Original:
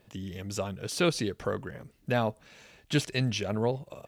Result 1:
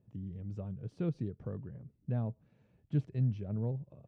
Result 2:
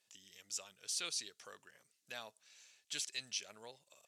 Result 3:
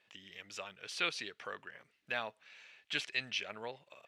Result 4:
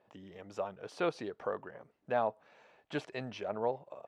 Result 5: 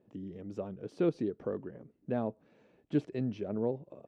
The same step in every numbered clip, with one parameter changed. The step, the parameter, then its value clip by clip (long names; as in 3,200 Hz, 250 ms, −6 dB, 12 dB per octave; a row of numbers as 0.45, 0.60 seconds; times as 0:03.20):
resonant band-pass, frequency: 120, 7,100, 2,400, 800, 310 Hertz